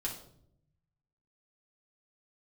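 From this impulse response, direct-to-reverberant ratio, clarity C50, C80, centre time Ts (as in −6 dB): −3.0 dB, 7.0 dB, 11.0 dB, 25 ms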